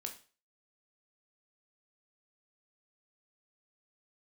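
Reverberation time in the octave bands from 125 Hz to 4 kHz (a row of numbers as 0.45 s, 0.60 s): 0.40 s, 0.35 s, 0.40 s, 0.35 s, 0.35 s, 0.35 s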